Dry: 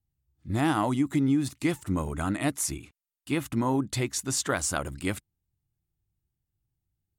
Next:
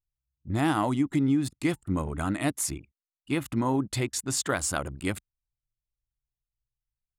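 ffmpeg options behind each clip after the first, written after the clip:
-af "bandreject=f=5900:w=15,anlmdn=0.398"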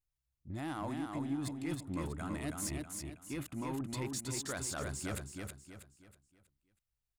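-af "areverse,acompressor=threshold=0.02:ratio=6,areverse,asoftclip=type=tanh:threshold=0.0299,aecho=1:1:321|642|963|1284|1605:0.631|0.233|0.0864|0.032|0.0118,volume=0.891"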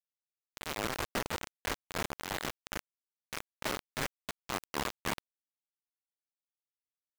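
-af "aeval=exprs='0.0473*(cos(1*acos(clip(val(0)/0.0473,-1,1)))-cos(1*PI/2))+0.015*(cos(7*acos(clip(val(0)/0.0473,-1,1)))-cos(7*PI/2))':c=same,highpass=f=440:t=q:w=0.5412,highpass=f=440:t=q:w=1.307,lowpass=f=3200:t=q:w=0.5176,lowpass=f=3200:t=q:w=0.7071,lowpass=f=3200:t=q:w=1.932,afreqshift=-370,acrusher=bits=5:mix=0:aa=0.000001,volume=2.11"

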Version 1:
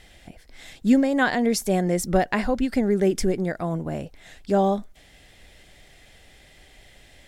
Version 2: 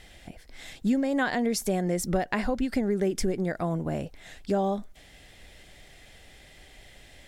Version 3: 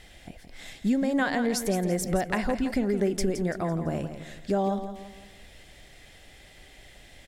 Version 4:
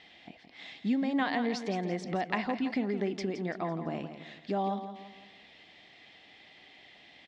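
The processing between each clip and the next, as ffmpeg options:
-af "acompressor=threshold=0.0631:ratio=3"
-af "aecho=1:1:168|336|504|672:0.316|0.133|0.0558|0.0234"
-af "highpass=260,equalizer=f=390:t=q:w=4:g=-5,equalizer=f=550:t=q:w=4:g=-9,equalizer=f=1500:t=q:w=4:g=-8,lowpass=f=4300:w=0.5412,lowpass=f=4300:w=1.3066"

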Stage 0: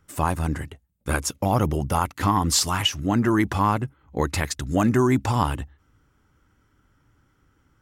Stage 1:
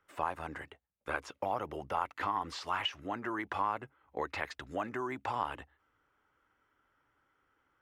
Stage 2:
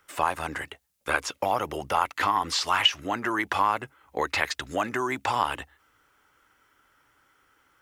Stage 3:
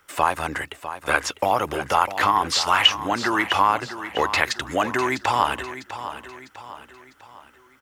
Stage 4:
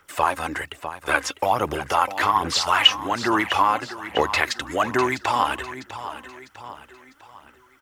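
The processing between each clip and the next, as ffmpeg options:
-filter_complex "[0:a]acompressor=threshold=0.0891:ratio=6,acrossover=split=410 3300:gain=0.112 1 0.178[s0][s1][s2];[s0][s1][s2]amix=inputs=3:normalize=0,acrossover=split=5500[s3][s4];[s4]acompressor=threshold=0.00126:ratio=4:attack=1:release=60[s5];[s3][s5]amix=inputs=2:normalize=0,volume=0.596"
-af "highshelf=f=11000:g=-9,crystalizer=i=4.5:c=0,volume=2.37"
-af "aecho=1:1:651|1302|1953|2604:0.251|0.111|0.0486|0.0214,volume=1.78"
-af "aphaser=in_gain=1:out_gain=1:delay=3.9:decay=0.43:speed=1.2:type=sinusoidal,volume=0.841"

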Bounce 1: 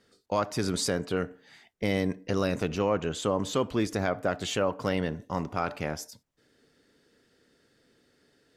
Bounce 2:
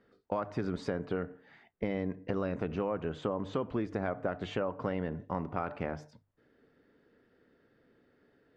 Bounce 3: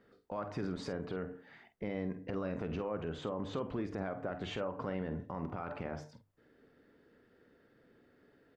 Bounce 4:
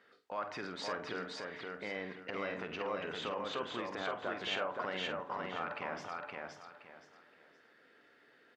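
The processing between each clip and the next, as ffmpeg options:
-af "lowpass=1800,bandreject=f=50:t=h:w=6,bandreject=f=100:t=h:w=6,bandreject=f=150:t=h:w=6,acompressor=threshold=0.0355:ratio=6"
-filter_complex "[0:a]alimiter=level_in=1.78:limit=0.0631:level=0:latency=1:release=52,volume=0.562,asplit=2[s0][s1];[s1]adelay=48,volume=0.282[s2];[s0][s2]amix=inputs=2:normalize=0,volume=1.12"
-filter_complex "[0:a]bandpass=f=2700:t=q:w=0.62:csg=0,asplit=2[s0][s1];[s1]aecho=0:1:520|1040|1560|2080:0.708|0.191|0.0516|0.0139[s2];[s0][s2]amix=inputs=2:normalize=0,volume=2.51"

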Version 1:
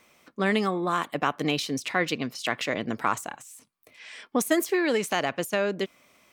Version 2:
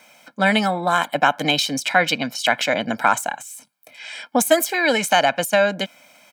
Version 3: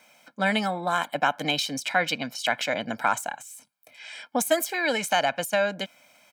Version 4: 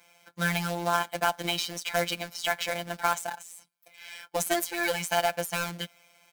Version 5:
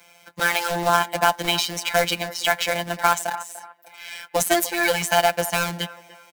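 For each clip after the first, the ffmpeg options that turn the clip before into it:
-af "highpass=220,aecho=1:1:1.3:0.83,volume=2.37"
-af "asubboost=boost=2:cutoff=110,volume=0.473"
-af "acrusher=bits=2:mode=log:mix=0:aa=0.000001,afftfilt=real='hypot(re,im)*cos(PI*b)':imag='0':win_size=1024:overlap=0.75"
-filter_complex "[0:a]acrossover=split=240|2600[s0][s1][s2];[s0]aeval=exprs='(mod(59.6*val(0)+1,2)-1)/59.6':c=same[s3];[s1]aecho=1:1:295|590|885:0.178|0.0533|0.016[s4];[s3][s4][s2]amix=inputs=3:normalize=0,volume=2.37"

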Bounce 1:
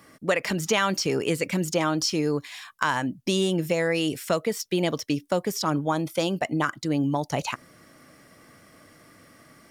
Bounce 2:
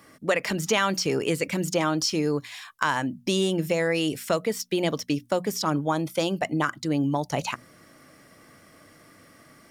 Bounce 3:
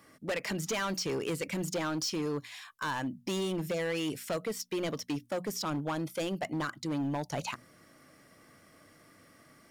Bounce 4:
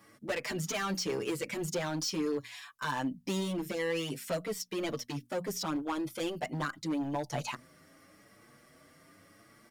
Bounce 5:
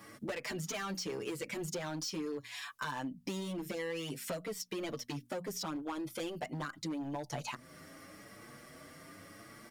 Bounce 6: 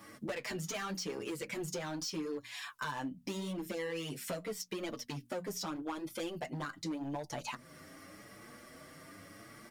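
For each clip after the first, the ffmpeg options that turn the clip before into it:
-af "bandreject=f=60:t=h:w=6,bandreject=f=120:t=h:w=6,bandreject=f=180:t=h:w=6,bandreject=f=240:t=h:w=6"
-af "volume=13.3,asoftclip=hard,volume=0.075,volume=0.501"
-filter_complex "[0:a]asplit=2[s0][s1];[s1]adelay=6.8,afreqshift=0.85[s2];[s0][s2]amix=inputs=2:normalize=1,volume=1.33"
-af "acompressor=threshold=0.00562:ratio=4,volume=2.11"
-af "flanger=delay=3.3:depth=7.1:regen=-59:speed=0.81:shape=sinusoidal,volume=1.58"

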